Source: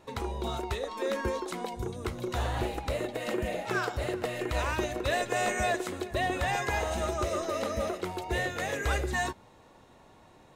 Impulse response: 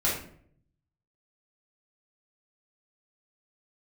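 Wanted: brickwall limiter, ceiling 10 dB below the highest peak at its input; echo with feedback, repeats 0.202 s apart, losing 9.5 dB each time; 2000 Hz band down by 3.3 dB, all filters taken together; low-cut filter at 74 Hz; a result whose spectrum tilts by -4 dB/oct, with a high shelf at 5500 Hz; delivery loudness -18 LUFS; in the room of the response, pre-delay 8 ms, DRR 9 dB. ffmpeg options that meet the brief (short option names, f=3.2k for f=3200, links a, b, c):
-filter_complex "[0:a]highpass=74,equalizer=f=2k:t=o:g=-5,highshelf=f=5.5k:g=7.5,alimiter=level_in=4dB:limit=-24dB:level=0:latency=1,volume=-4dB,aecho=1:1:202|404|606|808:0.335|0.111|0.0365|0.012,asplit=2[a][b];[1:a]atrim=start_sample=2205,adelay=8[c];[b][c]afir=irnorm=-1:irlink=0,volume=-19.5dB[d];[a][d]amix=inputs=2:normalize=0,volume=18dB"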